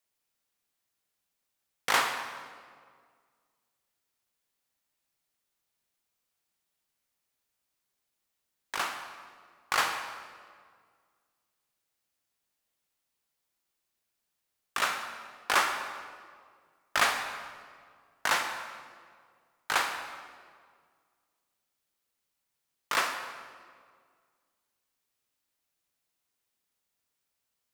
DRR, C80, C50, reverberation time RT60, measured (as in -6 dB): 6.0 dB, 8.0 dB, 6.5 dB, 1.9 s